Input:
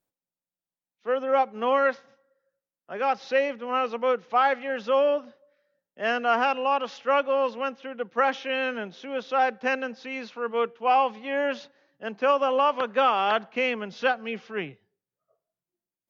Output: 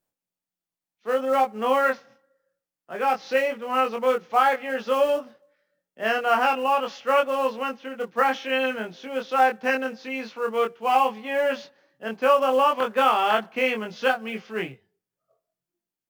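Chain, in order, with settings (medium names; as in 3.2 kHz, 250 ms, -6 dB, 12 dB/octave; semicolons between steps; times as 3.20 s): band-stop 3.8 kHz, Q 23; in parallel at -5 dB: short-mantissa float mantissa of 2-bit; on the sum: doubling 23 ms -3 dB; trim -3.5 dB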